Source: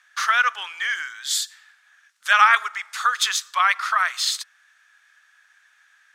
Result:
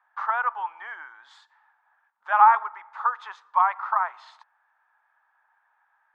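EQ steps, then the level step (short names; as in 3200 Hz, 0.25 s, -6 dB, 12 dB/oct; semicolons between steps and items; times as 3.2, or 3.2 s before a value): synth low-pass 890 Hz, resonance Q 7.2; -4.5 dB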